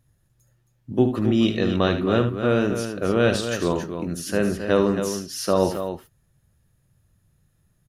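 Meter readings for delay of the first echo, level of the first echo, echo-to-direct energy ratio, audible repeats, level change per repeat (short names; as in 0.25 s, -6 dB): 74 ms, -9.5 dB, -6.0 dB, 2, no steady repeat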